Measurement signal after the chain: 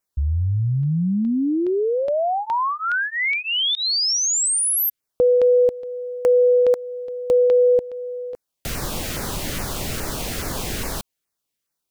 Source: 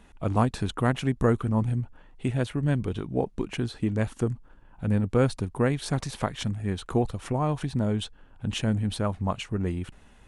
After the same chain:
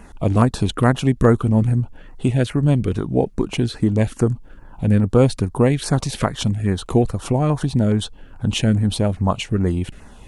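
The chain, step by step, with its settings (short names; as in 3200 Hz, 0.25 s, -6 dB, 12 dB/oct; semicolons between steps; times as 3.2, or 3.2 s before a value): in parallel at -2.5 dB: compressor, threshold -36 dBFS; on the sum: LFO notch saw down 2.4 Hz 740–3800 Hz; gain +7.5 dB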